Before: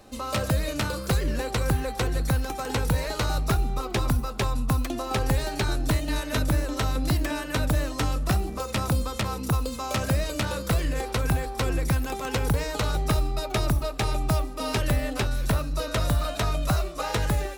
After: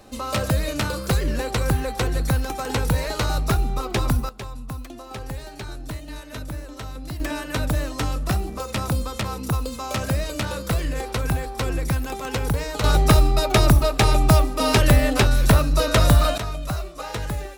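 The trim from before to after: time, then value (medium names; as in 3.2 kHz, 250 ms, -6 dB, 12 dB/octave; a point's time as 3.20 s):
+3 dB
from 4.29 s -8.5 dB
from 7.20 s +1 dB
from 12.84 s +9 dB
from 16.38 s -3 dB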